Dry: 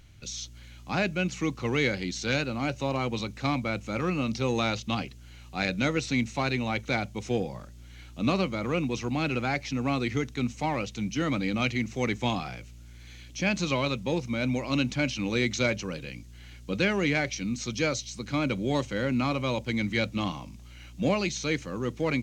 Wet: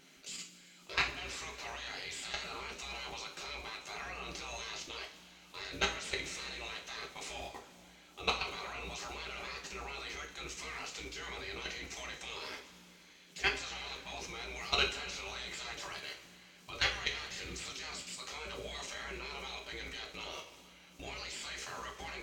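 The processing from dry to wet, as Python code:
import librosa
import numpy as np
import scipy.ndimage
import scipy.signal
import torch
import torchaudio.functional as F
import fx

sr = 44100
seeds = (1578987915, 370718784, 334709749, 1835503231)

y = fx.spec_gate(x, sr, threshold_db=-15, keep='weak')
y = fx.level_steps(y, sr, step_db=17)
y = fx.rev_double_slope(y, sr, seeds[0], early_s=0.33, late_s=3.0, knee_db=-18, drr_db=-0.5)
y = F.gain(torch.from_numpy(y), 4.5).numpy()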